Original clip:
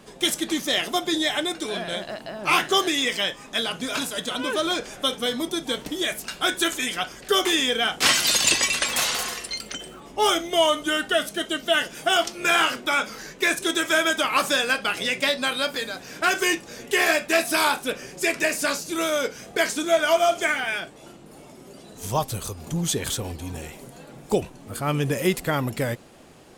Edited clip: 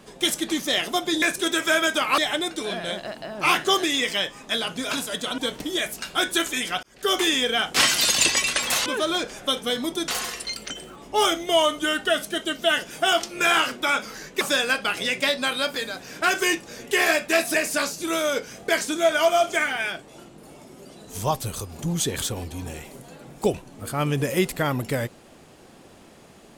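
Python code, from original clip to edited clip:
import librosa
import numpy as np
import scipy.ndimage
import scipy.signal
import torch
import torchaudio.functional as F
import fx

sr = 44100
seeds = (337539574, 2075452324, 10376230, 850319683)

y = fx.edit(x, sr, fx.move(start_s=4.42, length_s=1.22, to_s=9.12),
    fx.fade_in_span(start_s=7.09, length_s=0.33),
    fx.move(start_s=13.45, length_s=0.96, to_s=1.22),
    fx.cut(start_s=17.54, length_s=0.88), tone=tone)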